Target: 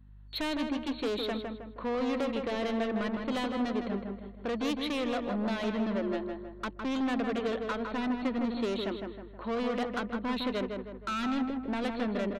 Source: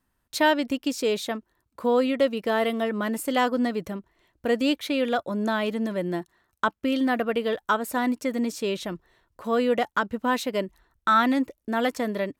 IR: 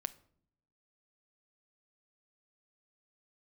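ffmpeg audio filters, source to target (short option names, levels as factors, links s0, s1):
-filter_complex "[0:a]afftfilt=real='re*between(b*sr/4096,190,4400)':imag='im*between(b*sr/4096,190,4400)':win_size=4096:overlap=0.75,aeval=exprs='val(0)+0.00224*(sin(2*PI*50*n/s)+sin(2*PI*2*50*n/s)/2+sin(2*PI*3*50*n/s)/3+sin(2*PI*4*50*n/s)/4+sin(2*PI*5*50*n/s)/5)':c=same,acrossover=split=400|3000[s0][s1][s2];[s1]acompressor=threshold=0.0398:ratio=6[s3];[s0][s3][s2]amix=inputs=3:normalize=0,asoftclip=type=tanh:threshold=0.0355,asplit=2[s4][s5];[s5]adelay=158,lowpass=f=2100:p=1,volume=0.631,asplit=2[s6][s7];[s7]adelay=158,lowpass=f=2100:p=1,volume=0.48,asplit=2[s8][s9];[s9]adelay=158,lowpass=f=2100:p=1,volume=0.48,asplit=2[s10][s11];[s11]adelay=158,lowpass=f=2100:p=1,volume=0.48,asplit=2[s12][s13];[s13]adelay=158,lowpass=f=2100:p=1,volume=0.48,asplit=2[s14][s15];[s15]adelay=158,lowpass=f=2100:p=1,volume=0.48[s16];[s4][s6][s8][s10][s12][s14][s16]amix=inputs=7:normalize=0"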